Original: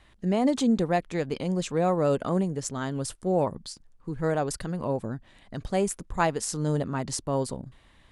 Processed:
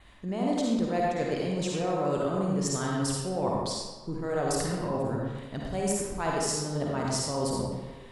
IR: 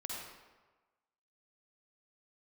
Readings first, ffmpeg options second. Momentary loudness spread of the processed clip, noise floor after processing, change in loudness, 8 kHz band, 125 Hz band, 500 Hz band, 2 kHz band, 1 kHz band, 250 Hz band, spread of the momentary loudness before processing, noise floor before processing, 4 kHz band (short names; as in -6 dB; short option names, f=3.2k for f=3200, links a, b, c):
7 LU, -46 dBFS, -2.0 dB, +2.5 dB, -2.0 dB, -2.0 dB, -1.5 dB, -1.0 dB, -2.0 dB, 15 LU, -58 dBFS, +3.0 dB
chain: -filter_complex "[0:a]adynamicequalizer=threshold=0.00178:dfrequency=5400:dqfactor=6.6:tfrequency=5400:tqfactor=6.6:attack=5:release=100:ratio=0.375:range=3:mode=boostabove:tftype=bell,areverse,acompressor=threshold=-31dB:ratio=6,areverse[a];[1:a]atrim=start_sample=2205[b];[a][b]afir=irnorm=-1:irlink=0,volume=6.5dB"